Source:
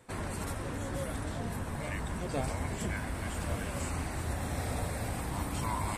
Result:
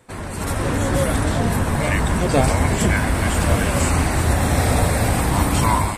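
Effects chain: level rider gain up to 11.5 dB; trim +5.5 dB

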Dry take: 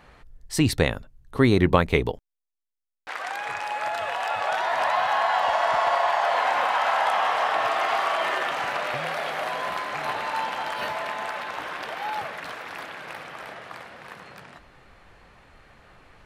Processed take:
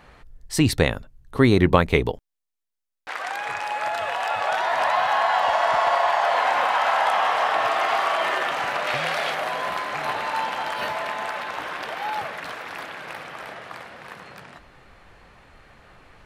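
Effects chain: 8.87–9.35 s: peaking EQ 4.8 kHz +5.5 dB 2.8 oct; trim +2 dB

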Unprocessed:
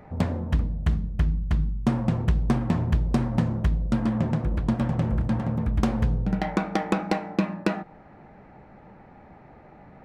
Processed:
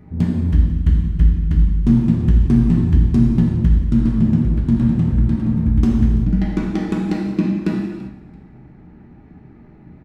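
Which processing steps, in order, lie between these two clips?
FFT filter 360 Hz 0 dB, 520 Hz -17 dB, 2.7 kHz -9 dB; frequency-shifting echo 336 ms, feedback 31%, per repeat -67 Hz, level -20 dB; gated-style reverb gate 420 ms falling, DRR -1.5 dB; trim +4.5 dB

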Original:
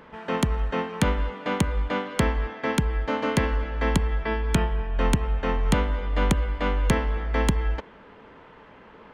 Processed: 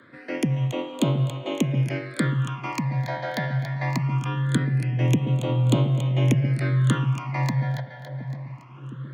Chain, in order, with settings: two-band feedback delay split 560 Hz, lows 713 ms, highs 281 ms, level -9.5 dB; frequency shift +81 Hz; phase shifter stages 8, 0.22 Hz, lowest notch 350–1700 Hz

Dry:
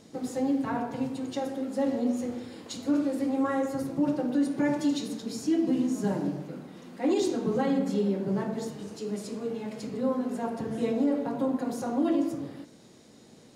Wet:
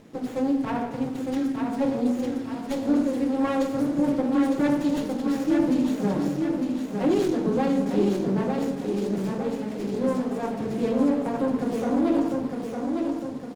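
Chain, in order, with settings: spectral selection erased 1.22–1.80 s, 380–1200 Hz; feedback delay 906 ms, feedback 50%, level -4.5 dB; sliding maximum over 9 samples; trim +3 dB

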